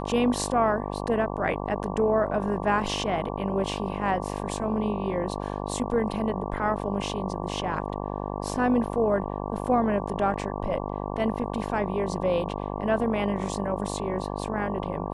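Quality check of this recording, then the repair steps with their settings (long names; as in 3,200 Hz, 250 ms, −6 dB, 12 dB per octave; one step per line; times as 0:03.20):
mains buzz 50 Hz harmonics 23 −32 dBFS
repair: hum removal 50 Hz, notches 23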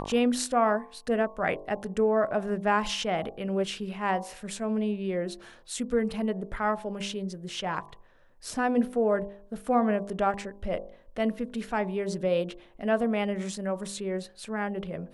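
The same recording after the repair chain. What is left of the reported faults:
none of them is left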